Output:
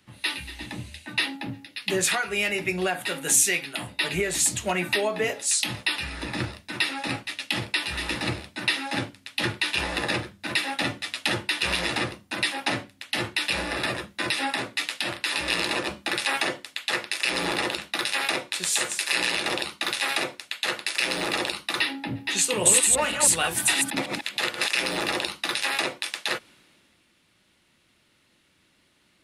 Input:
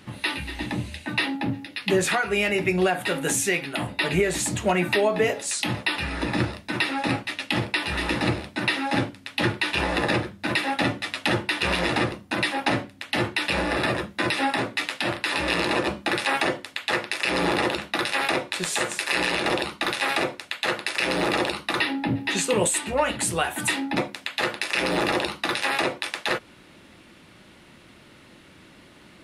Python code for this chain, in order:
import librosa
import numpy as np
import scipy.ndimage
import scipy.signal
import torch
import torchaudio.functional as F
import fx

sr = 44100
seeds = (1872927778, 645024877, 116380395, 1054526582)

y = fx.reverse_delay(x, sr, ms=157, wet_db=-2, at=(22.49, 24.69))
y = fx.high_shelf(y, sr, hz=2200.0, db=11.0)
y = fx.band_widen(y, sr, depth_pct=40)
y = y * librosa.db_to_amplitude(-6.5)